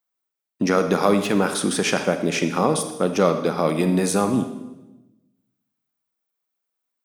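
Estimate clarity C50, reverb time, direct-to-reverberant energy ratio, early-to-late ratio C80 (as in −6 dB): 9.0 dB, 1.0 s, 8.0 dB, 11.0 dB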